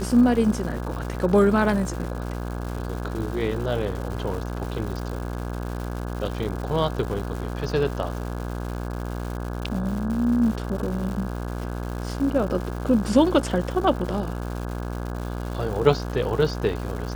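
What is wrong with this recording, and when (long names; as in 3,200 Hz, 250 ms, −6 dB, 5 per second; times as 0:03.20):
mains buzz 60 Hz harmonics 28 −30 dBFS
surface crackle 290 per second −32 dBFS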